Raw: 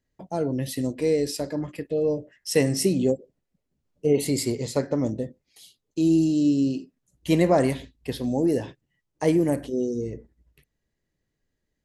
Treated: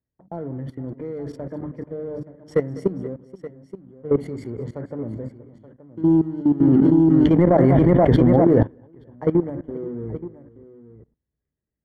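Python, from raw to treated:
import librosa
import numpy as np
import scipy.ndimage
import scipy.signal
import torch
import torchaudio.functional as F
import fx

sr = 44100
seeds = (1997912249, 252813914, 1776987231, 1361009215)

y = fx.wiener(x, sr, points=9)
y = scipy.signal.sosfilt(scipy.signal.butter(2, 78.0, 'highpass', fs=sr, output='sos'), y)
y = fx.low_shelf(y, sr, hz=150.0, db=11.5)
y = fx.hum_notches(y, sr, base_hz=50, count=6)
y = fx.level_steps(y, sr, step_db=17)
y = fx.leveller(y, sr, passes=1)
y = scipy.signal.savgol_filter(y, 41, 4, mode='constant')
y = fx.echo_multitap(y, sr, ms=(199, 478, 876), db=(-19.0, -20.0, -15.5))
y = fx.env_flatten(y, sr, amount_pct=100, at=(6.6, 8.63))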